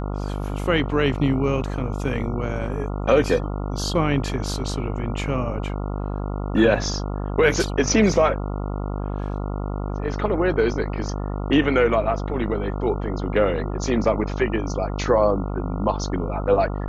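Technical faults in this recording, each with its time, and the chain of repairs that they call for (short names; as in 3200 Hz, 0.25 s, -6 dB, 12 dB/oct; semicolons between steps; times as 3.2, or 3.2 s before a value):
buzz 50 Hz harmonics 28 -27 dBFS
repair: de-hum 50 Hz, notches 28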